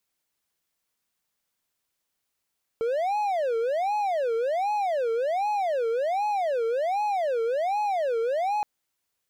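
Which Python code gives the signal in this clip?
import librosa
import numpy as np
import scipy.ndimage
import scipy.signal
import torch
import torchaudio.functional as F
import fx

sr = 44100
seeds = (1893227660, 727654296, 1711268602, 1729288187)

y = fx.siren(sr, length_s=5.82, kind='wail', low_hz=452.0, high_hz=843.0, per_s=1.3, wave='triangle', level_db=-21.0)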